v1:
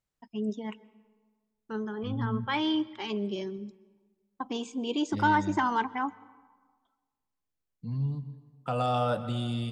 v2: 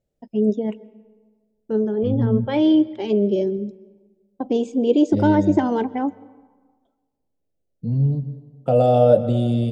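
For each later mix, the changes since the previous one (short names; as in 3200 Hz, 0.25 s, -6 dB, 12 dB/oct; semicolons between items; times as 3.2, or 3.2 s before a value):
master: add resonant low shelf 790 Hz +11 dB, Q 3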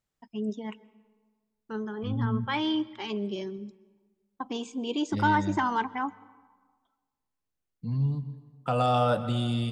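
second voice +3.5 dB; master: add resonant low shelf 790 Hz -11 dB, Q 3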